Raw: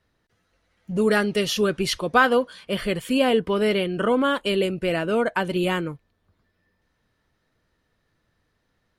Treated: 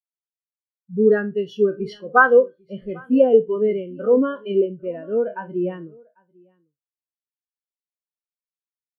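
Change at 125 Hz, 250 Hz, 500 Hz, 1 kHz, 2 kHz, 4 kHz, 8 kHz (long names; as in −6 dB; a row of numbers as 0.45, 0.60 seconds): −4.5 dB, +0.5 dB, +4.5 dB, +1.0 dB, +1.5 dB, below −15 dB, below −25 dB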